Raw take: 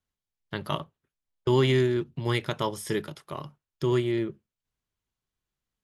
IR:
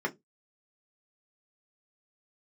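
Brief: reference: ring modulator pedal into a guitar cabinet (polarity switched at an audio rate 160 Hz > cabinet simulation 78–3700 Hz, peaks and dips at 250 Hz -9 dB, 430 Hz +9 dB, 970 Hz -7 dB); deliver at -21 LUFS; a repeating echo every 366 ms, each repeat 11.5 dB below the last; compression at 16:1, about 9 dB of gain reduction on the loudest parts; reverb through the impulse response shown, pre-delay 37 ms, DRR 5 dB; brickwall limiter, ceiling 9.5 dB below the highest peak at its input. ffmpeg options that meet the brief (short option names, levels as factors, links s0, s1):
-filter_complex "[0:a]acompressor=threshold=0.0447:ratio=16,alimiter=limit=0.0631:level=0:latency=1,aecho=1:1:366|732|1098:0.266|0.0718|0.0194,asplit=2[s0][s1];[1:a]atrim=start_sample=2205,adelay=37[s2];[s1][s2]afir=irnorm=-1:irlink=0,volume=0.237[s3];[s0][s3]amix=inputs=2:normalize=0,aeval=exprs='val(0)*sgn(sin(2*PI*160*n/s))':c=same,highpass=78,equalizer=f=250:t=q:w=4:g=-9,equalizer=f=430:t=q:w=4:g=9,equalizer=f=970:t=q:w=4:g=-7,lowpass=f=3700:w=0.5412,lowpass=f=3700:w=1.3066,volume=4.22"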